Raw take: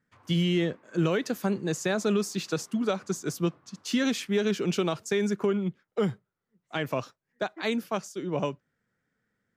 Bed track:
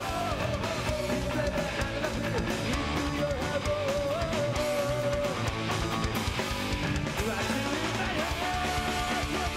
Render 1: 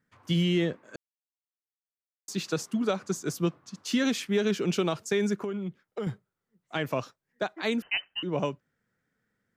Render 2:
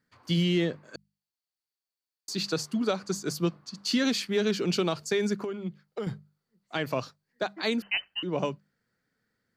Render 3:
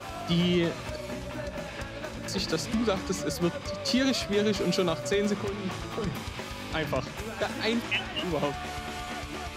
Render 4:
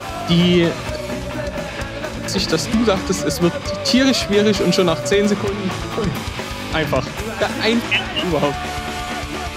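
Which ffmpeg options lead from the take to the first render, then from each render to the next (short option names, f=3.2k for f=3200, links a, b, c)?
-filter_complex "[0:a]asettb=1/sr,asplit=3[a][b][c];[a]atrim=end=5.364[d];[b]atrim=start=5.36:end=6.07,asetpts=PTS-STARTPTS,afade=t=in:d=0.004:c=qsin,afade=t=out:st=0.706:d=0.004:c=qsin,acompressor=threshold=-31dB:ratio=3:attack=3.2:release=140:knee=1:detection=peak[e];[c]atrim=start=6.066[f];[d][e]acrossfade=d=0.004:c1=hsin:c2=qsin[g];[g][f]acrossfade=d=0.004:c1=qsin:c2=hsin,asettb=1/sr,asplit=3[h][i][j];[h]atrim=end=7.824[k];[i]atrim=start=7.82:end=8.23,asetpts=PTS-STARTPTS,afade=t=in:d=0.004:c=qsin,afade=t=out:st=0.406:d=0.004:c=qsin,lowpass=f=2.7k:t=q:w=0.5098,lowpass=f=2.7k:t=q:w=0.6013,lowpass=f=2.7k:t=q:w=0.9,lowpass=f=2.7k:t=q:w=2.563,afreqshift=-3200[l];[j]atrim=start=8.226[m];[k][l]acrossfade=d=0.004:c1=hsin:c2=qsin[n];[n][m]acrossfade=d=0.004:c1=qsin:c2=hsin,asplit=3[o][p][q];[o]atrim=end=0.96,asetpts=PTS-STARTPTS,afade=t=out:st=0.956:d=0.004:c=hsin[r];[p]atrim=start=0.96:end=2.28,asetpts=PTS-STARTPTS,volume=0[s];[q]atrim=start=2.28,asetpts=PTS-STARTPTS,afade=t=in:d=0.004:c=hsin[t];[r][s][t]concat=n=3:v=0:a=1"
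-af "equalizer=f=4.5k:t=o:w=0.25:g=12.5,bandreject=f=50:t=h:w=6,bandreject=f=100:t=h:w=6,bandreject=f=150:t=h:w=6,bandreject=f=200:t=h:w=6"
-filter_complex "[1:a]volume=-6.5dB[a];[0:a][a]amix=inputs=2:normalize=0"
-af "volume=11dB"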